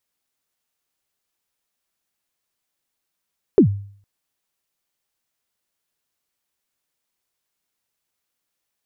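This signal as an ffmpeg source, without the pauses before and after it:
ffmpeg -f lavfi -i "aevalsrc='0.562*pow(10,-3*t/0.53)*sin(2*PI*(450*0.095/log(100/450)*(exp(log(100/450)*min(t,0.095)/0.095)-1)+100*max(t-0.095,0)))':duration=0.46:sample_rate=44100" out.wav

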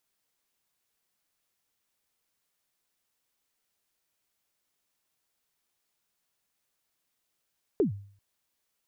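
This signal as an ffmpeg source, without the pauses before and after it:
ffmpeg -f lavfi -i "aevalsrc='0.126*pow(10,-3*t/0.51)*sin(2*PI*(460*0.118/log(100/460)*(exp(log(100/460)*min(t,0.118)/0.118)-1)+100*max(t-0.118,0)))':duration=0.39:sample_rate=44100" out.wav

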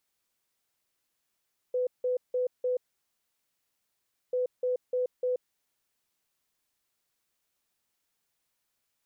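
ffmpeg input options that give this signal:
ffmpeg -f lavfi -i "aevalsrc='0.0562*sin(2*PI*501*t)*clip(min(mod(mod(t,2.59),0.3),0.13-mod(mod(t,2.59),0.3))/0.005,0,1)*lt(mod(t,2.59),1.2)':duration=5.18:sample_rate=44100" out.wav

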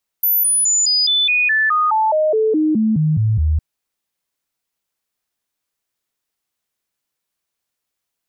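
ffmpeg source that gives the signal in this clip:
ffmpeg -f lavfi -i "aevalsrc='0.237*clip(min(mod(t,0.21),0.21-mod(t,0.21))/0.005,0,1)*sin(2*PI*14000*pow(2,-floor(t/0.21)/2)*mod(t,0.21))':duration=3.36:sample_rate=44100" out.wav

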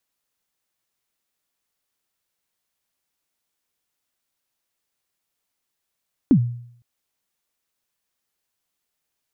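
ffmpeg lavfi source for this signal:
ffmpeg -f lavfi -i "aevalsrc='0.398*pow(10,-3*t/0.64)*sin(2*PI*(310*0.078/log(120/310)*(exp(log(120/310)*min(t,0.078)/0.078)-1)+120*max(t-0.078,0)))':duration=0.51:sample_rate=44100" out.wav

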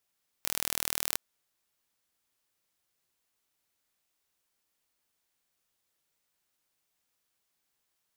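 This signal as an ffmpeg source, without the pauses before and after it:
ffmpeg -f lavfi -i "aevalsrc='0.75*eq(mod(n,1111),0)':duration=0.73:sample_rate=44100" out.wav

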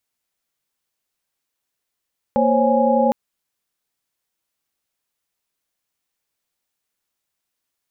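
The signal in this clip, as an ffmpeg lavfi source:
ffmpeg -f lavfi -i "aevalsrc='0.112*(sin(2*PI*233.08*t)+sin(2*PI*523.25*t)+sin(2*PI*554.37*t)+sin(2*PI*830.61*t))':duration=0.76:sample_rate=44100" out.wav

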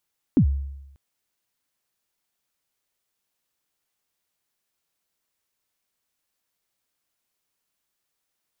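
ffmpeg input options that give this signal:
ffmpeg -f lavfi -i "aevalsrc='0.282*pow(10,-3*t/0.92)*sin(2*PI*(320*0.085/log(69/320)*(exp(log(69/320)*min(t,0.085)/0.085)-1)+69*max(t-0.085,0)))':duration=0.59:sample_rate=44100" out.wav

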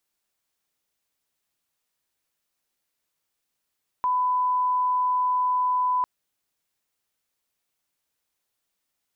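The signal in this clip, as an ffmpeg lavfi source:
ffmpeg -f lavfi -i "sine=frequency=1000:duration=2:sample_rate=44100,volume=-1.94dB" out.wav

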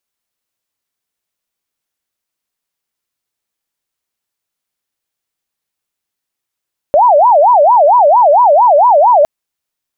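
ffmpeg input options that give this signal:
ffmpeg -f lavfi -i "aevalsrc='0.631*sin(2*PI*(781.5*t-213.5/(2*PI*4.4)*sin(2*PI*4.4*t)))':duration=2.31:sample_rate=44100" out.wav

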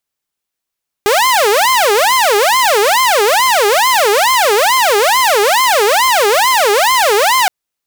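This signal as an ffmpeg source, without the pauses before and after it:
ffmpeg -f lavfi -i "aevalsrc='0.501*(2*mod((726*t-324/(2*PI*2.3)*sin(2*PI*2.3*t)),1)-1)':duration=6.42:sample_rate=44100" out.wav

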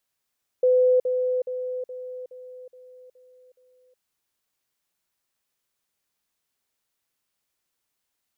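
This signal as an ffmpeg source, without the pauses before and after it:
ffmpeg -f lavfi -i "aevalsrc='pow(10,(-15-6*floor(t/0.42))/20)*sin(2*PI*505*t)*clip(min(mod(t,0.42),0.37-mod(t,0.42))/0.005,0,1)':duration=3.36:sample_rate=44100" out.wav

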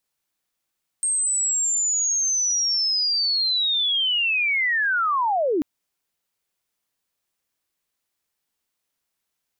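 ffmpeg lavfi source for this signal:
ffmpeg -f lavfi -i "aevalsrc='pow(10,(-19.5+1*t/4.59)/20)*sin(2*PI*(8500*t-8230*t*t/(2*4.59)))':duration=4.59:sample_rate=44100" out.wav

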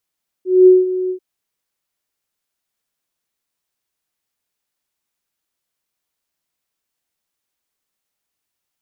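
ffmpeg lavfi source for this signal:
ffmpeg -f lavfi -i "aevalsrc='0.708*sin(2*PI*369*t)':duration=0.74:sample_rate=44100,afade=type=in:duration=0.216,afade=type=out:start_time=0.216:duration=0.187:silence=0.2,afade=type=out:start_time=0.65:duration=0.09" out.wav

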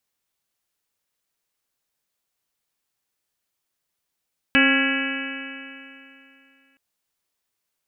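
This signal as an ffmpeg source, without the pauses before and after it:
ffmpeg -f lavfi -i "aevalsrc='0.133*pow(10,-3*t/2.76)*sin(2*PI*268.27*t)+0.0447*pow(10,-3*t/2.76)*sin(2*PI*538.14*t)+0.0237*pow(10,-3*t/2.76)*sin(2*PI*811.2*t)+0.0211*pow(10,-3*t/2.76)*sin(2*PI*1089.02*t)+0.0473*pow(10,-3*t/2.76)*sin(2*PI*1373.09*t)+0.133*pow(10,-3*t/2.76)*sin(2*PI*1664.88*t)+0.0531*pow(10,-3*t/2.76)*sin(2*PI*1965.78*t)+0.0841*pow(10,-3*t/2.76)*sin(2*PI*2277.09*t)+0.106*pow(10,-3*t/2.76)*sin(2*PI*2600.04*t)+0.0668*pow(10,-3*t/2.76)*sin(2*PI*2935.79*t)':duration=2.22:sample_rate=44100" out.wav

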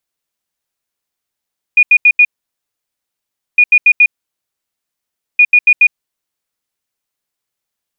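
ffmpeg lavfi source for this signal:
ffmpeg -f lavfi -i "aevalsrc='0.708*sin(2*PI*2450*t)*clip(min(mod(mod(t,1.81),0.14),0.06-mod(mod(t,1.81),0.14))/0.005,0,1)*lt(mod(t,1.81),0.56)':duration=5.43:sample_rate=44100" out.wav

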